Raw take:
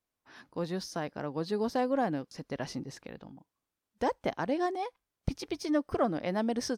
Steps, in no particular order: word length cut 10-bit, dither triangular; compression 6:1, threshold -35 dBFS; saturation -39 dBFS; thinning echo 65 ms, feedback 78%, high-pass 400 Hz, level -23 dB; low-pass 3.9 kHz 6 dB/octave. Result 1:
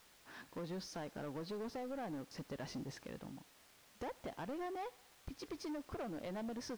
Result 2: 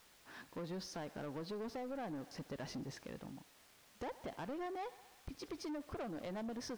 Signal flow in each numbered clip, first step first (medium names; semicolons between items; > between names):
compression > saturation > thinning echo > word length cut > low-pass; thinning echo > compression > word length cut > low-pass > saturation